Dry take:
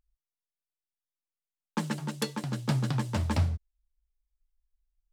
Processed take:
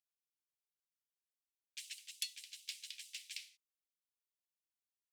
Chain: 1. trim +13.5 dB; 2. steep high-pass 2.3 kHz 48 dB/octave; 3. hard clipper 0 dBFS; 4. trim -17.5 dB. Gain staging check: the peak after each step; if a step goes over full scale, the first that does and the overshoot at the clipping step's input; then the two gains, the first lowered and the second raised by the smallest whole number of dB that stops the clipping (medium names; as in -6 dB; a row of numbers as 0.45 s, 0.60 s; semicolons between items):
-0.5 dBFS, -4.5 dBFS, -4.5 dBFS, -22.0 dBFS; nothing clips